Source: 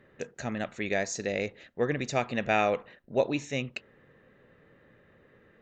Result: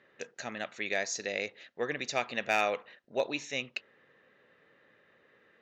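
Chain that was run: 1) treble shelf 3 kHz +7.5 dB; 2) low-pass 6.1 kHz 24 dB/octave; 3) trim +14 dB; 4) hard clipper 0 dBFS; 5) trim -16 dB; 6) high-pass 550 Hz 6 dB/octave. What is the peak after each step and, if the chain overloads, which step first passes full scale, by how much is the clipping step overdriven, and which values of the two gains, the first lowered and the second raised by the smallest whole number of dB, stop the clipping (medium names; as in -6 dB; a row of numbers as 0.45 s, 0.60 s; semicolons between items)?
-10.0 dBFS, -10.0 dBFS, +4.0 dBFS, 0.0 dBFS, -16.0 dBFS, -13.5 dBFS; step 3, 4.0 dB; step 3 +10 dB, step 5 -12 dB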